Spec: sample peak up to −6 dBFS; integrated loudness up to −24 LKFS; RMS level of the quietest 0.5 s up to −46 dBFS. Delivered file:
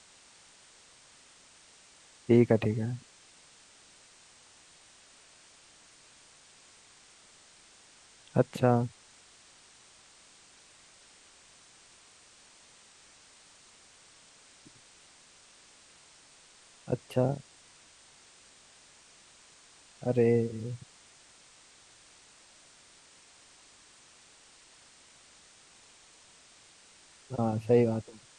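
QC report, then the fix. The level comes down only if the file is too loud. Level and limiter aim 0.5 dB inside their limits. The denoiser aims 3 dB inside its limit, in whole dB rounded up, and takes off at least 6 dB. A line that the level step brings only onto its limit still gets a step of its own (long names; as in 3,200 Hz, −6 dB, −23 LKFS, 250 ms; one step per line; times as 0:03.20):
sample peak −9.5 dBFS: in spec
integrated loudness −29.0 LKFS: in spec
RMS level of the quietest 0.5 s −58 dBFS: in spec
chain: no processing needed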